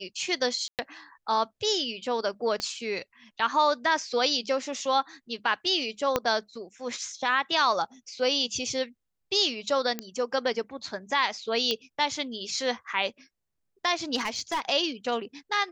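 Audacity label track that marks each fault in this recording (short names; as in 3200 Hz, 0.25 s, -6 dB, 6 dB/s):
0.680000	0.790000	gap 0.108 s
2.600000	2.600000	pop -17 dBFS
6.160000	6.160000	pop -9 dBFS
9.990000	9.990000	pop -15 dBFS
11.710000	11.710000	pop -13 dBFS
14.150000	14.600000	clipped -24 dBFS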